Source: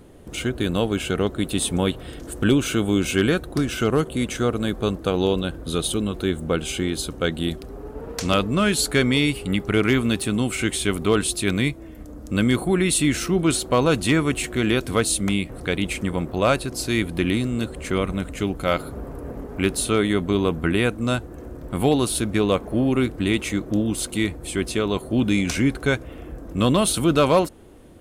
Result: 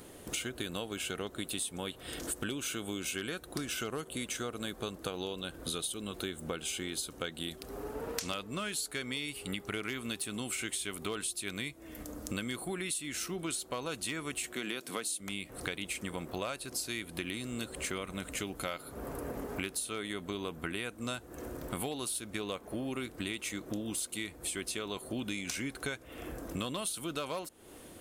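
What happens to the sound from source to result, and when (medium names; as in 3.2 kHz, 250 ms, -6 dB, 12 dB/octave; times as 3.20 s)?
14.53–15.20 s: high-pass 150 Hz 24 dB/octave
whole clip: tilt EQ +2.5 dB/octave; compression 10:1, threshold -34 dBFS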